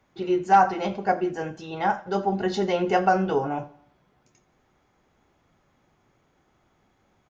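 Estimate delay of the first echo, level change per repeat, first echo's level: 86 ms, -5.5 dB, -22.0 dB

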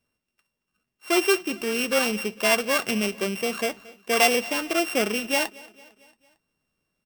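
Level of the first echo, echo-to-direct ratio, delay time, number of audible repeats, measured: -22.5 dB, -21.0 dB, 0.226 s, 3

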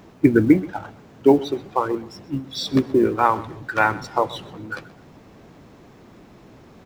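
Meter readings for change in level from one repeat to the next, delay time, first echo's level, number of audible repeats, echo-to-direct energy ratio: -11.0 dB, 0.128 s, -19.5 dB, 2, -19.0 dB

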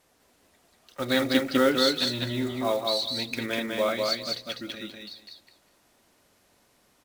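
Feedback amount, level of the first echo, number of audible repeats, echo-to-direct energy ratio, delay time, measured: 18%, -3.0 dB, 3, -3.0 dB, 0.199 s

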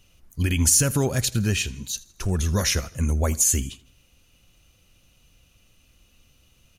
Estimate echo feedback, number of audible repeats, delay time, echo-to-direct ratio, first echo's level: 46%, 3, 81 ms, -20.5 dB, -21.5 dB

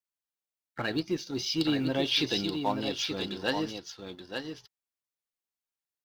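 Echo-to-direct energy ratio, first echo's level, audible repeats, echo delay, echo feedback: -6.5 dB, -6.5 dB, 1, 0.879 s, no steady repeat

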